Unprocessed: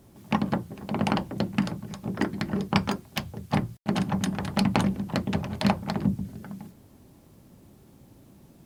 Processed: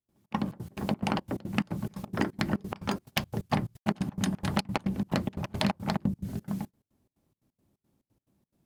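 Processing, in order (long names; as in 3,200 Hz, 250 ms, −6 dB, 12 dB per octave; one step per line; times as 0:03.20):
noise gate −42 dBFS, range −25 dB
downward compressor 6 to 1, threshold −31 dBFS, peak gain reduction 13.5 dB
gate pattern ".xx.xx.x" 176 BPM −24 dB
level +6.5 dB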